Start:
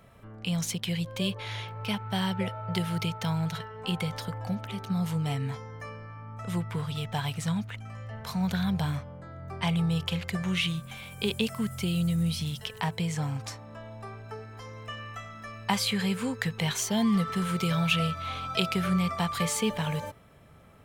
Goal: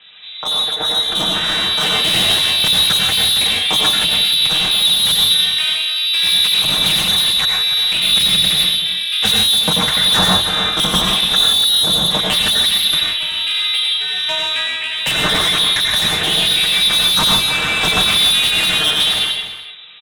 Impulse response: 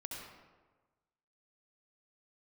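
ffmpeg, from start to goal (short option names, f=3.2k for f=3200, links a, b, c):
-filter_complex "[0:a]bandreject=f=50:t=h:w=6,bandreject=f=100:t=h:w=6,bandreject=f=150:t=h:w=6,aecho=1:1:7.1:0.96,lowpass=f=3.1k:t=q:w=0.5098,lowpass=f=3.1k:t=q:w=0.6013,lowpass=f=3.1k:t=q:w=0.9,lowpass=f=3.1k:t=q:w=2.563,afreqshift=-3700,dynaudnorm=f=480:g=7:m=13dB,asplit=2[a][b];[b]aeval=exprs='0.891*sin(PI/2*3.98*val(0)/0.891)':c=same,volume=-4dB[c];[a][c]amix=inputs=2:normalize=0,aeval=exprs='val(0)*sin(2*PI*150*n/s)':c=same,acrossover=split=260[d][e];[d]equalizer=f=150:t=o:w=1:g=10.5[f];[e]asoftclip=type=tanh:threshold=-13.5dB[g];[f][g]amix=inputs=2:normalize=0,asplit=2[h][i];[i]adelay=303.2,volume=-10dB,highshelf=f=4k:g=-6.82[j];[h][j]amix=inputs=2:normalize=0[k];[1:a]atrim=start_sample=2205,afade=t=out:st=0.18:d=0.01,atrim=end_sample=8379,asetrate=30870,aresample=44100[l];[k][l]afir=irnorm=-1:irlink=0,asetrate=45938,aresample=44100,volume=2.5dB"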